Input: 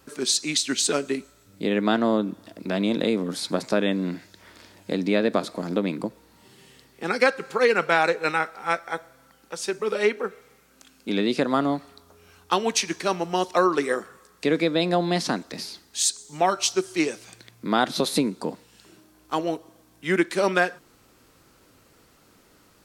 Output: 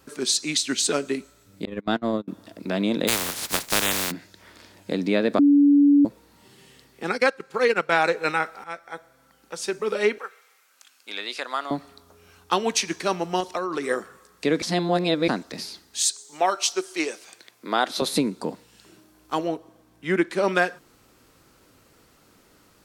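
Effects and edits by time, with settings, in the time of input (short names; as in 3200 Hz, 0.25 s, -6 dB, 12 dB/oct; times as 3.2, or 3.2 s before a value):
1.65–2.28 gate -21 dBFS, range -32 dB
3.07–4.1 spectral contrast lowered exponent 0.2
5.39–6.05 bleep 286 Hz -12 dBFS
7.11–7.93 transient shaper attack -2 dB, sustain -11 dB
8.64–9.63 fade in, from -13 dB
10.18–11.71 HPF 1000 Hz
13.4–13.86 compressor, threshold -23 dBFS
14.62–15.28 reverse
16.05–18.02 HPF 380 Hz
19.47–20.48 high shelf 3400 Hz -7.5 dB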